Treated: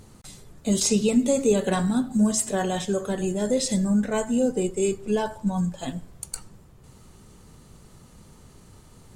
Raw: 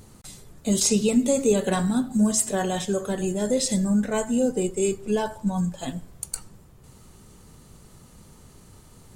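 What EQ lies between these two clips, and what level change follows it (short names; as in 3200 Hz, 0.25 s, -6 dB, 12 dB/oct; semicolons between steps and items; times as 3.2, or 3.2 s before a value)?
high shelf 10000 Hz -6.5 dB; 0.0 dB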